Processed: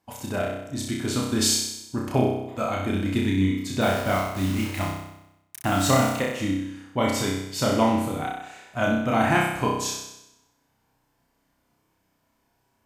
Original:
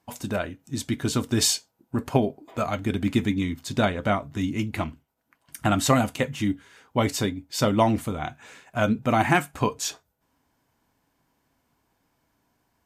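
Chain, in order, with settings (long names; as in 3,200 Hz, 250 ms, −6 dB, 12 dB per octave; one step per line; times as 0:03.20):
0:03.81–0:06.15: bit-depth reduction 6 bits, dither none
flutter between parallel walls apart 5.4 metres, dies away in 0.85 s
level −3 dB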